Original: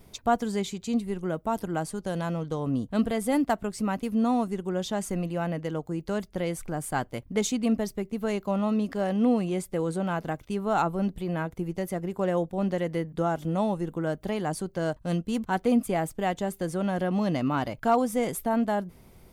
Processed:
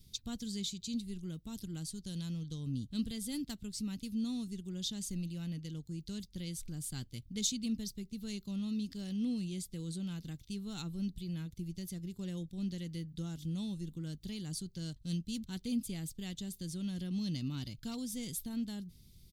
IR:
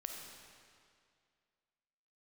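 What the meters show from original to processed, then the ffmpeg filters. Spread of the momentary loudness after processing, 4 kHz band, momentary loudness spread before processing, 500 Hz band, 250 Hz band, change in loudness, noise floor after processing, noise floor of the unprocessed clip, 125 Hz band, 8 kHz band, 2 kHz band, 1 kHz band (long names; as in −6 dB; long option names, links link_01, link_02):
6 LU, −1.0 dB, 6 LU, −24.0 dB, −10.0 dB, −11.0 dB, −61 dBFS, −55 dBFS, −7.5 dB, −3.0 dB, −19.0 dB, −30.5 dB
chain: -af "firequalizer=gain_entry='entry(120,0);entry(640,-29);entry(3800,7);entry(8600,0)':delay=0.05:min_phase=1,volume=-4.5dB"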